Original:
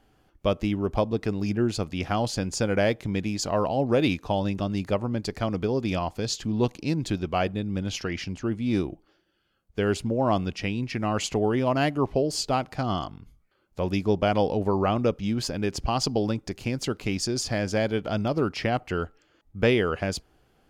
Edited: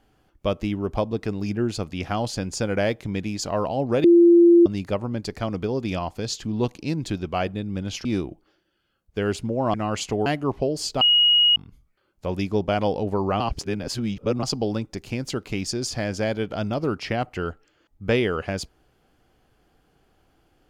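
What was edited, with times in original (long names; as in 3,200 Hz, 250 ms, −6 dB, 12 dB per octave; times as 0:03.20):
0:04.04–0:04.66: beep over 343 Hz −9.5 dBFS
0:08.05–0:08.66: remove
0:10.35–0:10.97: remove
0:11.49–0:11.80: remove
0:12.55–0:13.10: beep over 2,890 Hz −13.5 dBFS
0:14.94–0:15.97: reverse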